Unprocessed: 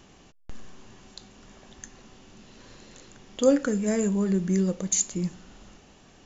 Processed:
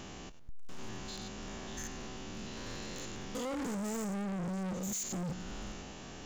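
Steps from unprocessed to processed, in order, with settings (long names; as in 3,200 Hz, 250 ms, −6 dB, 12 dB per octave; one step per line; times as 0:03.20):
spectrum averaged block by block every 100 ms
0:03.62–0:04.22: high-shelf EQ 6,900 Hz +6.5 dB
in parallel at +1 dB: downward compressor 10 to 1, threshold −40 dBFS, peak gain reduction 23 dB
on the sum: brickwall limiter −22 dBFS, peak gain reduction 11 dB
hard clipping −37.5 dBFS, distortion −4 dB
level +2 dB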